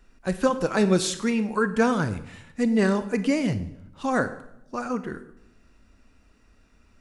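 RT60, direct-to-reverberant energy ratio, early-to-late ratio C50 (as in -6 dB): 0.80 s, 11.0 dB, 13.0 dB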